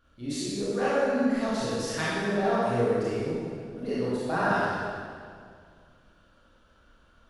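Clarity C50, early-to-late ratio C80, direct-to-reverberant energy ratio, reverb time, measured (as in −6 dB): −4.0 dB, −1.5 dB, −10.0 dB, 2.1 s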